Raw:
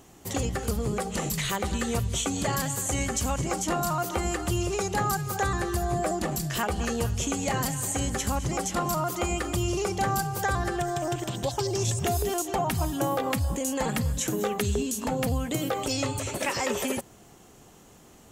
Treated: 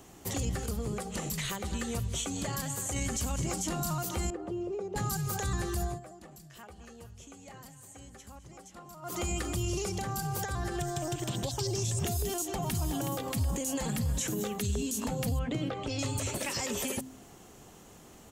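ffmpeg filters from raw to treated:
-filter_complex "[0:a]asettb=1/sr,asplit=3[a][b][c];[a]atrim=end=4.304[d];[b]atrim=start=4.3:end=4.96,asetpts=PTS-STARTPTS,afade=t=in:d=0.004:c=qsin,afade=t=out:st=0.656:d=0.004:c=qsin,bandpass=f=430:t=q:w=1.7[e];[c]atrim=start=4.956[f];[d][e]acrossfade=d=0.004:c1=hsin:c2=qsin[g];[g][f]acrossfade=d=0.004:c1=qsin:c2=hsin,asettb=1/sr,asplit=3[h][i][j];[h]atrim=end=9.894[k];[i]atrim=start=9.89:end=10.75,asetpts=PTS-STARTPTS,afade=t=in:d=0.004:c=qsin,afade=t=out:st=0.856:d=0.004:c=qsin,acompressor=threshold=-27dB:ratio=6:attack=3.2:release=140:knee=1:detection=peak[l];[j]atrim=start=10.746[m];[k][l]acrossfade=d=0.004:c1=hsin:c2=qsin[n];[n][m]acrossfade=d=0.004:c1=qsin:c2=hsin,asplit=2[o][p];[p]afade=t=in:st=12.25:d=0.01,afade=t=out:st=12.71:d=0.01,aecho=0:1:370|740|1110|1480|1850|2220:0.298538|0.164196|0.0903078|0.0496693|0.0273181|0.015025[q];[o][q]amix=inputs=2:normalize=0,asettb=1/sr,asplit=3[r][s][t];[r]atrim=end=15.394[u];[s]atrim=start=15.39:end=15.99,asetpts=PTS-STARTPTS,afade=t=in:d=0.004:c=qsin,afade=t=out:st=0.596:d=0.004:c=qsin,lowpass=2.9k[v];[t]atrim=start=15.986[w];[u][v]acrossfade=d=0.004:c1=hsin:c2=qsin[x];[x][w]acrossfade=d=0.004:c1=qsin:c2=hsin,asplit=5[y][z][aa][ab][ac];[y]atrim=end=0.662[ad];[z]atrim=start=0.658:end=2.962,asetpts=PTS-STARTPTS,volume=-5dB[ae];[aa]atrim=start=2.958:end=6,asetpts=PTS-STARTPTS,afade=t=out:st=2.852:d=0.19:silence=0.0841395[af];[ab]atrim=start=6:end=9.02,asetpts=PTS-STARTPTS,volume=-21.5dB[ag];[ac]atrim=start=9.02,asetpts=PTS-STARTPTS,afade=t=in:d=0.19:silence=0.0841395[ah];[ad][ae]acrossfade=d=0.004:c1=hsin:c2=hsin[ai];[af][ag][ah]concat=n=3:v=0:a=1[aj];[ai][aj]acrossfade=d=0.004:c1=hsin:c2=hsin,bandreject=f=130.2:t=h:w=4,bandreject=f=260.4:t=h:w=4,acrossover=split=260|3000[ak][al][am];[al]acompressor=threshold=-36dB:ratio=6[an];[ak][an][am]amix=inputs=3:normalize=0,alimiter=limit=-23dB:level=0:latency=1:release=25"

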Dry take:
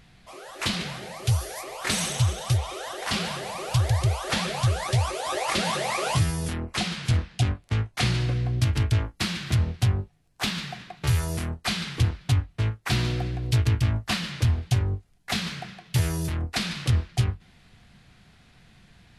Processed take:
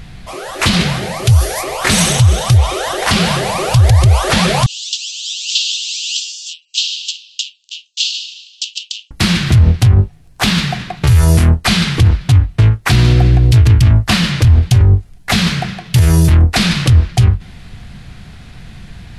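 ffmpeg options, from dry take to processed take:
-filter_complex "[0:a]asettb=1/sr,asplit=3[a][b][c];[a]atrim=end=4.664[d];[b]atrim=start=4.66:end=9.11,asetpts=PTS-STARTPTS,afade=t=in:d=0.004:c=qsin,afade=t=out:st=4.446:d=0.004:c=qsin,asuperpass=centerf=4700:order=20:qfactor=0.95[e];[c]atrim=start=9.106[f];[d][e]acrossfade=d=0.004:c1=hsin:c2=qsin[g];[g][f]acrossfade=d=0.004:c1=qsin:c2=hsin,lowshelf=f=140:g=10,alimiter=level_in=16.5dB:limit=-1dB:release=50:level=0:latency=1,volume=-1dB"

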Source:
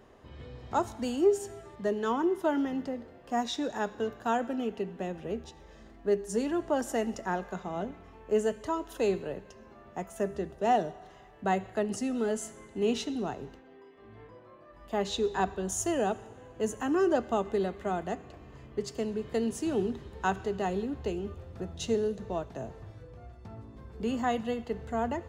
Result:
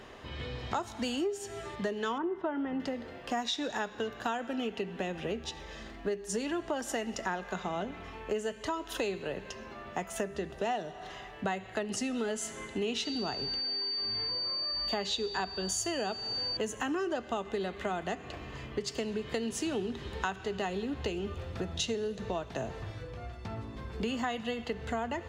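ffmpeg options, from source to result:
-filter_complex "[0:a]asettb=1/sr,asplit=3[a][b][c];[a]atrim=end=2.184[d];[b]atrim=start=2.18:end=2.8,asetpts=PTS-STARTPTS,afade=t=in:d=0.004:c=qsin,afade=t=out:st=0.616:d=0.004:c=qsin,lowpass=1.6k[e];[c]atrim=start=2.796[f];[d][e]acrossfade=d=0.004:c1=hsin:c2=qsin[g];[g][f]acrossfade=d=0.004:c1=qsin:c2=hsin,asettb=1/sr,asplit=3[h][i][j];[h]atrim=end=13.054[k];[i]atrim=start=13.05:end=16.57,asetpts=PTS-STARTPTS,afade=t=in:d=0.004:c=qsin,afade=t=out:st=3.516:d=0.004:c=qsin,aeval=exprs='val(0)+0.00708*sin(2*PI*4600*n/s)':c=same[l];[j]atrim=start=16.566[m];[k][l]acrossfade=d=0.004:c1=hsin:c2=qsin[n];[n][m]acrossfade=d=0.004:c1=qsin:c2=hsin,equalizer=f=3.1k:w=0.49:g=10,acompressor=threshold=-36dB:ratio=6,volume=5dB"

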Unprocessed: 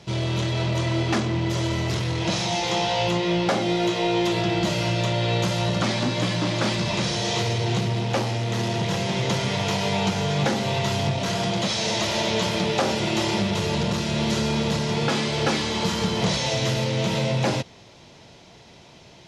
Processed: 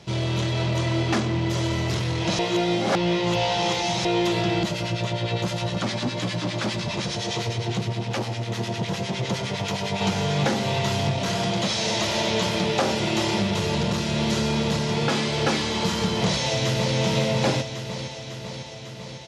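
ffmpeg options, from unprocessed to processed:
-filter_complex "[0:a]asettb=1/sr,asplit=3[a][b][c];[a]atrim=end=4.634[d];[b]atrim=start=4.63:end=10.01,asetpts=PTS-STARTPTS,afade=t=in:d=0.004:c=qsin,afade=t=out:st=5.376:d=0.004:c=qsin,acrossover=split=1100[e][f];[e]aeval=exprs='val(0)*(1-0.7/2+0.7/2*cos(2*PI*9.8*n/s))':c=same[g];[f]aeval=exprs='val(0)*(1-0.7/2-0.7/2*cos(2*PI*9.8*n/s))':c=same[h];[g][h]amix=inputs=2:normalize=0[i];[c]atrim=start=10.006[j];[d][i]acrossfade=d=0.004:c1=hsin:c2=qsin[k];[k][j]acrossfade=d=0.004:c1=qsin:c2=hsin,asplit=2[l][m];[m]afade=t=in:st=16.24:d=0.01,afade=t=out:st=16.97:d=0.01,aecho=0:1:550|1100|1650|2200|2750|3300|3850|4400|4950|5500|6050:0.501187|0.350831|0.245582|0.171907|0.120335|0.0842345|0.0589642|0.0412749|0.0288924|0.0202247|0.0141573[n];[l][n]amix=inputs=2:normalize=0,asplit=3[o][p][q];[o]atrim=end=2.392[r];[p]atrim=start=2.388:end=4.052,asetpts=PTS-STARTPTS,areverse[s];[q]atrim=start=4.048[t];[r][s]acrossfade=d=0.004:c1=hsin:c2=hsin[u];[u][t]acrossfade=d=0.004:c1=hsin:c2=hsin"

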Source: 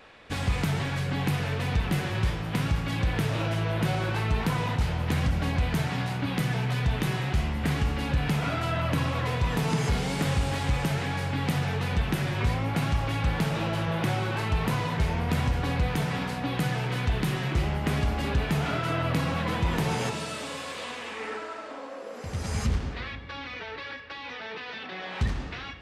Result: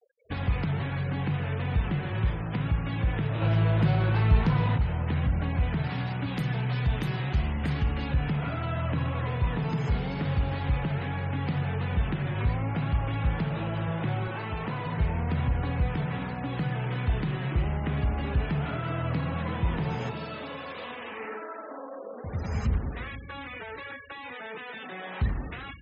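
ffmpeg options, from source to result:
-filter_complex "[0:a]asettb=1/sr,asplit=3[a][b][c];[a]atrim=end=5.844[d];[b]atrim=start=5.84:end=8.14,asetpts=PTS-STARTPTS,afade=t=in:d=0.004:c=qsin,afade=t=out:st=2.296:d=0.004:c=qsin,aemphasis=mode=production:type=50kf[e];[c]atrim=start=8.136[f];[d][e]acrossfade=d=0.004:c1=hsin:c2=qsin[g];[g][f]acrossfade=d=0.004:c1=qsin:c2=hsin,asettb=1/sr,asplit=3[h][i][j];[h]atrim=end=14.274[k];[i]atrim=start=14.27:end=14.86,asetpts=PTS-STARTPTS,afade=t=in:d=0.004:c=qsin,afade=t=out:st=0.586:d=0.004:c=qsin,highpass=f=200:p=1[l];[j]atrim=start=14.856[m];[k][l]acrossfade=d=0.004:c1=hsin:c2=qsin[n];[n][m]acrossfade=d=0.004:c1=qsin:c2=hsin,asplit=3[o][p][q];[o]atrim=end=3.422[r];[p]atrim=start=3.418:end=4.782,asetpts=PTS-STARTPTS,volume=6.5dB[s];[q]atrim=start=4.778[t];[r][s]acrossfade=d=0.004:c1=hsin:c2=hsin[u];[u][t]acrossfade=d=0.004:c1=hsin:c2=hsin,aemphasis=mode=reproduction:type=50fm,afftfilt=real='re*gte(hypot(re,im),0.0112)':imag='im*gte(hypot(re,im),0.0112)':win_size=1024:overlap=0.75,acrossover=split=160[v][w];[w]acompressor=threshold=-35dB:ratio=2[x];[v][x]amix=inputs=2:normalize=0"

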